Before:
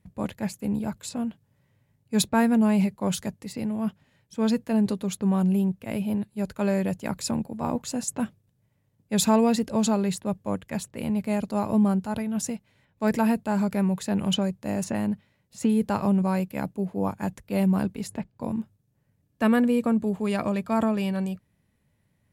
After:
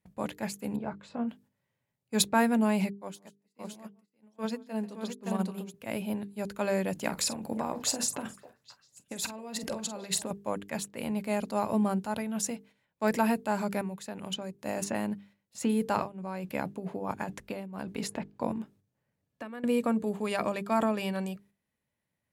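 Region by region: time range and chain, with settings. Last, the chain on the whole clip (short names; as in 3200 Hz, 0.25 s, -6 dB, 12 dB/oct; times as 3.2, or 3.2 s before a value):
0.76–1.29 LPF 1900 Hz + doubler 21 ms -10 dB
2.9–5.74 HPF 150 Hz + tapped delay 0.141/0.168/0.57 s -15.5/-13/-3 dB + upward expander 2.5:1, over -45 dBFS
6.95–10.31 negative-ratio compressor -32 dBFS + doubler 46 ms -12.5 dB + delay with a stepping band-pass 0.269 s, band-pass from 520 Hz, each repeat 1.4 oct, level -11 dB
13.81–14.59 compressor, threshold -28 dBFS + gate -34 dBFS, range -8 dB
15.96–19.64 negative-ratio compressor -31 dBFS + high shelf 6800 Hz -9 dB
whole clip: gate -51 dBFS, range -9 dB; low shelf 200 Hz -12 dB; notches 50/100/150/200/250/300/350/400/450 Hz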